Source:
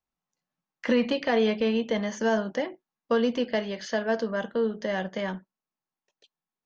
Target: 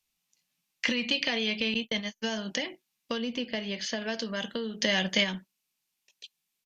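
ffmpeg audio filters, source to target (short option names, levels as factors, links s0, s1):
-filter_complex "[0:a]asettb=1/sr,asplit=3[s0][s1][s2];[s0]atrim=end=1.744[s3];[s1]atrim=start=1.74:end=2.35,asetpts=PTS-STARTPTS,afade=t=in:d=0.004:c=qsin,afade=t=out:st=0.606:d=0.004:c=qsin,agate=range=0.00126:threshold=0.0447:ratio=16:detection=peak[s4];[s2]atrim=start=2.346[s5];[s3][s4]acrossfade=d=0.004:c1=hsin:c2=qsin[s6];[s6][s5]acrossfade=d=0.004:c1=qsin:c2=hsin,asettb=1/sr,asplit=3[s7][s8][s9];[s7]atrim=end=3.184[s10];[s8]atrim=start=3.18:end=4.02,asetpts=PTS-STARTPTS,afade=t=in:d=0.004:c=qsin,afade=t=out:st=0.836:d=0.004:c=qsin,highshelf=f=2000:g=-10.5[s11];[s9]atrim=start=4.016[s12];[s10][s11]acrossfade=d=0.004:c1=hsin:c2=qsin[s13];[s13][s12]acrossfade=d=0.004:c1=qsin:c2=hsin,acompressor=threshold=0.0355:ratio=6,firequalizer=gain_entry='entry(220,0);entry(470,-5);entry(1500,-1);entry(2400,13)':delay=0.05:min_phase=1,asplit=3[s14][s15][s16];[s14]afade=t=out:st=4.81:d=0.02[s17];[s15]acontrast=23,afade=t=in:st=4.81:d=0.02,afade=t=out:st=5.23:d=0.02[s18];[s16]afade=t=in:st=5.23:d=0.02[s19];[s17][s18][s19]amix=inputs=3:normalize=0,volume=1.19" -ar 48000 -c:a mp2 -b:a 192k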